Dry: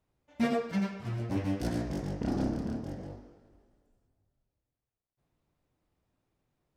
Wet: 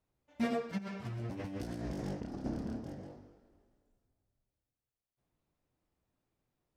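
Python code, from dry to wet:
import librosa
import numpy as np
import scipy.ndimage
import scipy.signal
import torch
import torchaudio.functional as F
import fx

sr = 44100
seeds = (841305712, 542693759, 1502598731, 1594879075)

y = fx.hum_notches(x, sr, base_hz=50, count=3)
y = fx.over_compress(y, sr, threshold_db=-36.0, ratio=-1.0, at=(0.77, 2.44), fade=0.02)
y = y * 10.0 ** (-4.5 / 20.0)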